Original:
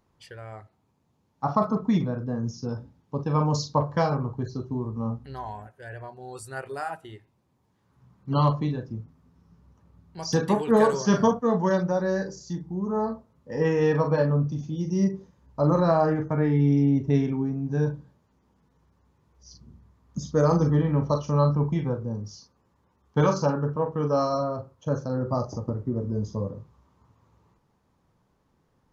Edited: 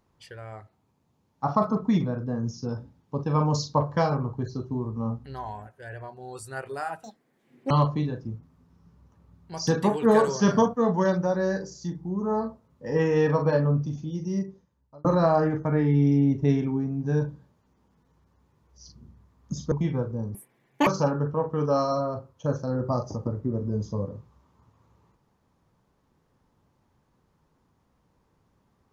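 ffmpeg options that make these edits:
-filter_complex "[0:a]asplit=7[a][b][c][d][e][f][g];[a]atrim=end=7.034[h];[b]atrim=start=7.03:end=8.36,asetpts=PTS-STARTPTS,asetrate=86877,aresample=44100,atrim=end_sample=29773,asetpts=PTS-STARTPTS[i];[c]atrim=start=8.356:end=15.7,asetpts=PTS-STARTPTS,afade=t=out:st=6.124:d=1.22[j];[d]atrim=start=15.7:end=20.372,asetpts=PTS-STARTPTS,afade=t=in:d=0.004:c=hsin[k];[e]atrim=start=21.628:end=22.264[l];[f]atrim=start=22.26:end=23.29,asetpts=PTS-STARTPTS,asetrate=86877,aresample=44100,atrim=end_sample=23057,asetpts=PTS-STARTPTS[m];[g]atrim=start=23.286[n];[h][i]acrossfade=d=0.004:c1=hsin:c2=hsin[o];[j][k]concat=n=2:v=0:a=1[p];[o][p]acrossfade=d=0.004:c1=hsin:c2=hsin[q];[q][l]acrossfade=d=0.004:c1=hsin:c2=hsin[r];[r][m]acrossfade=d=0.004:c1=hsin:c2=hsin[s];[s][n]acrossfade=d=0.004:c1=hsin:c2=hsin"

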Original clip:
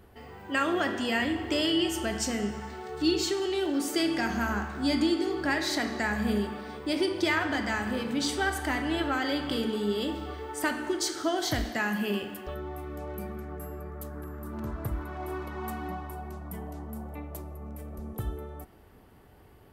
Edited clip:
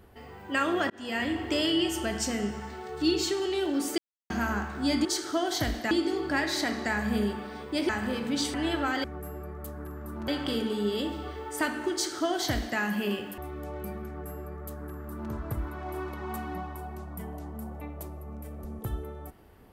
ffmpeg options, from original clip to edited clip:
-filter_complex "[0:a]asplit=11[a][b][c][d][e][f][g][h][i][j][k];[a]atrim=end=0.9,asetpts=PTS-STARTPTS,afade=t=out:st=0.896:d=0.004:c=hsin[l];[b]atrim=start=0.9:end=3.98,asetpts=PTS-STARTPTS,afade=t=in:d=0.54:c=qsin,afade=t=out:st=3.076:d=0.004:c=hsin[m];[c]atrim=start=3.98:end=4.3,asetpts=PTS-STARTPTS,volume=0[n];[d]atrim=start=4.3:end=5.052,asetpts=PTS-STARTPTS,afade=t=in:d=0.004:c=hsin[o];[e]atrim=start=10.958:end=11.822[p];[f]atrim=start=5.048:end=7.032[q];[g]atrim=start=7.728:end=8.382[r];[h]atrim=start=8.808:end=9.312[s];[i]atrim=start=13.408:end=14.652[t];[j]atrim=start=9.308:end=12.412[u];[k]atrim=start=12.718[v];[l][m][n][o]concat=n=4:v=0:a=1[w];[w][p]acrossfade=d=0.004:c1=hsin:c2=hsin[x];[x][q]acrossfade=d=0.004:c1=hsin:c2=hsin[y];[y][r]acrossfade=d=0.004:c1=hsin:c2=hsin[z];[z][s]acrossfade=d=0.004:c1=hsin:c2=hsin[aa];[aa][t]acrossfade=d=0.004:c1=hsin:c2=hsin[ab];[ab][u]acrossfade=d=0.004:c1=hsin:c2=hsin[ac];[ac][v]acrossfade=d=0.004:c1=hsin:c2=hsin"

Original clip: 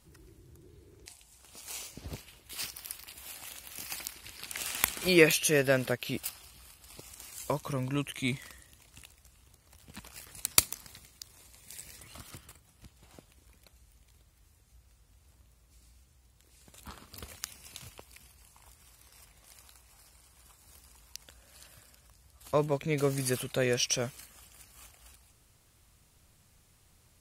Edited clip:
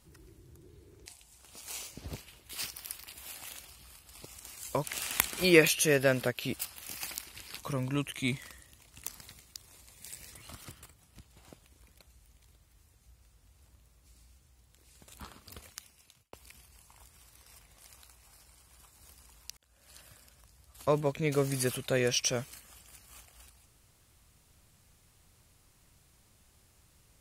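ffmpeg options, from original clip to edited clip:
-filter_complex "[0:a]asplit=8[a][b][c][d][e][f][g][h];[a]atrim=end=3.652[i];[b]atrim=start=6.398:end=7.592[j];[c]atrim=start=4.478:end=6.402[k];[d]atrim=start=3.648:end=4.482[l];[e]atrim=start=7.588:end=9.042[m];[f]atrim=start=10.698:end=17.99,asetpts=PTS-STARTPTS,afade=t=out:st=6.142:d=1.15[n];[g]atrim=start=17.99:end=21.23,asetpts=PTS-STARTPTS,afade=t=in:d=0.004:c=hsin,afade=t=out:st=3.236:d=0.004:c=hsin[o];[h]atrim=start=21.23,asetpts=PTS-STARTPTS,afade=t=in:d=0.41[p];[i][j]acrossfade=d=0.004:c1=hsin:c2=hsin[q];[q][k]acrossfade=d=0.004:c1=hsin:c2=hsin[r];[r][l]acrossfade=d=0.004:c1=hsin:c2=hsin[s];[s][m]acrossfade=d=0.004:c1=hsin:c2=hsin[t];[n][o][p]concat=n=3:v=0:a=1[u];[t][u]acrossfade=d=0.004:c1=hsin:c2=hsin"

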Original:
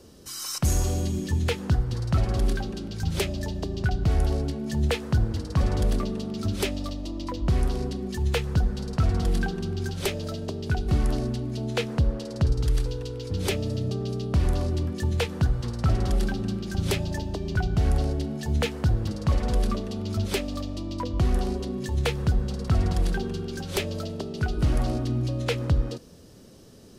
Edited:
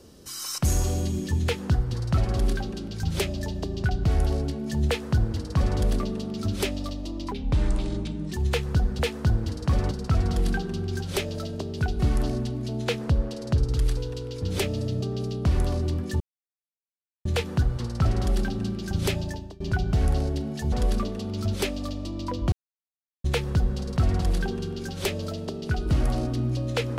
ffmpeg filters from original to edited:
-filter_complex "[0:a]asplit=10[a][b][c][d][e][f][g][h][i][j];[a]atrim=end=7.314[k];[b]atrim=start=7.31:end=8.13,asetpts=PTS-STARTPTS,asetrate=35721,aresample=44100,atrim=end_sample=44644,asetpts=PTS-STARTPTS[l];[c]atrim=start=8.126:end=8.802[m];[d]atrim=start=4.868:end=5.792[n];[e]atrim=start=8.798:end=15.09,asetpts=PTS-STARTPTS,afade=t=out:st=6.288:d=0.004:c=hsin,apad=pad_dur=1.05[o];[f]atrim=start=15.09:end=17.44,asetpts=PTS-STARTPTS,afade=t=in:d=0.004:c=hsin,afade=t=out:st=1.95:d=0.4:silence=0.0668344[p];[g]atrim=start=17.44:end=18.562,asetpts=PTS-STARTPTS,afade=t=in:d=0.004:c=hsin:silence=0.0668344[q];[h]atrim=start=19.438:end=21.24,asetpts=PTS-STARTPTS,afade=t=out:st=1.798:d=0.004:c=hsin[r];[i]atrim=start=21.24:end=21.96,asetpts=PTS-STARTPTS,volume=0[s];[j]atrim=start=21.96,asetpts=PTS-STARTPTS,afade=t=in:d=0.004:c=hsin[t];[k][l]acrossfade=d=0.004:c1=hsin:c2=hsin[u];[u][m]acrossfade=d=0.004:c1=hsin:c2=hsin[v];[v][n]acrossfade=d=0.004:c1=hsin:c2=hsin[w];[o][p][q]concat=n=3:v=0:a=1[x];[w][x]acrossfade=d=0.004:c1=hsin:c2=hsin[y];[r][s][t]concat=n=3:v=0:a=1[z];[y][z]acrossfade=d=0.004:c1=hsin:c2=hsin"

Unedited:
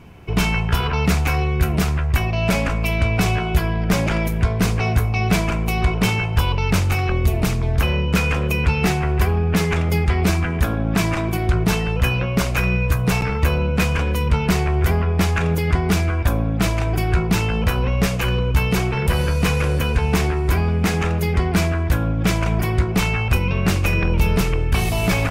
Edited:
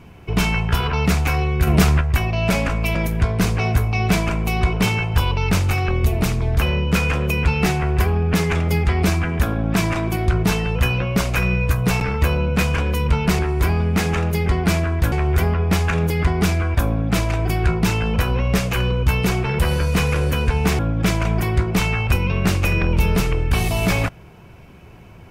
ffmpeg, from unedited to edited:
-filter_complex "[0:a]asplit=7[a][b][c][d][e][f][g];[a]atrim=end=1.672[h];[b]atrim=start=1.668:end=2.012,asetpts=PTS-STARTPTS,volume=5dB[i];[c]atrim=start=2.008:end=2.952[j];[d]atrim=start=4.158:end=14.602[k];[e]atrim=start=20.268:end=22.002[l];[f]atrim=start=14.598:end=20.272[m];[g]atrim=start=21.998[n];[h][i]acrossfade=d=0.004:c1=hsin:c2=hsin[o];[o][j]acrossfade=d=0.004:c1=hsin:c2=hsin[p];[p][k]acrossfade=d=0.004:c1=hsin:c2=hsin[q];[q][l]acrossfade=d=0.004:c1=hsin:c2=hsin[r];[r][m]acrossfade=d=0.004:c1=hsin:c2=hsin[s];[s][n]acrossfade=d=0.004:c1=hsin:c2=hsin"

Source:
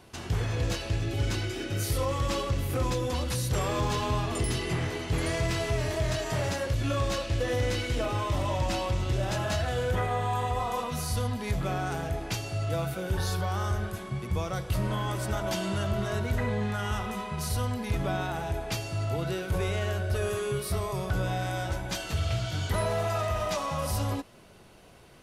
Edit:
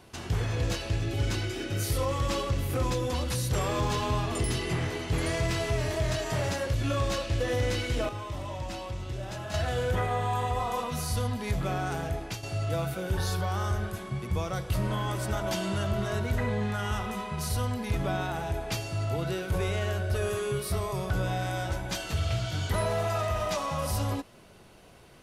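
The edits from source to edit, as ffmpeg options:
-filter_complex "[0:a]asplit=4[a][b][c][d];[a]atrim=end=8.092[e];[b]atrim=start=8.088:end=9.542,asetpts=PTS-STARTPTS,volume=-7.5dB[f];[c]atrim=start=9.538:end=12.43,asetpts=PTS-STARTPTS,afade=t=out:st=2.492:d=0.4:c=qsin:silence=0.375837[g];[d]atrim=start=12.43,asetpts=PTS-STARTPTS,afade=t=in:d=0.004:c=hsin:silence=0.375837[h];[e][f]acrossfade=d=0.004:c1=hsin:c2=hsin[i];[g][h]concat=n=2:v=0:a=1[j];[i][j]acrossfade=d=0.004:c1=hsin:c2=hsin"

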